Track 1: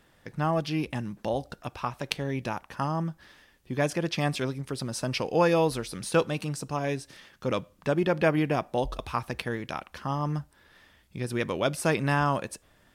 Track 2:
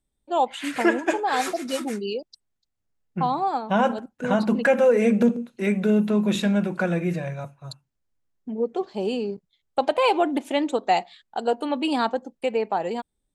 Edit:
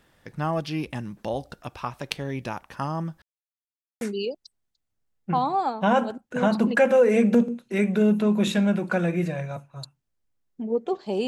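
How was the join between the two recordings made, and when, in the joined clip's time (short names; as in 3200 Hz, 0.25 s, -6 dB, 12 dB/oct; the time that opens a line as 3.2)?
track 1
3.22–4.01 mute
4.01 switch to track 2 from 1.89 s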